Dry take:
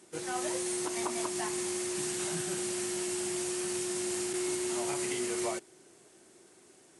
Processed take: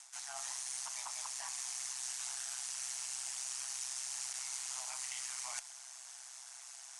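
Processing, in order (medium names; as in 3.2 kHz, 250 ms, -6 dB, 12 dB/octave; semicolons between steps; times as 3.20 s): steep high-pass 740 Hz 96 dB/octave; ring modulator 65 Hz; reverse; compression 5:1, threshold -54 dBFS, peak gain reduction 17 dB; reverse; Chebyshev shaper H 4 -43 dB, 8 -41 dB, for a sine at -39.5 dBFS; peaking EQ 6 kHz +10 dB 0.82 oct; trim +8.5 dB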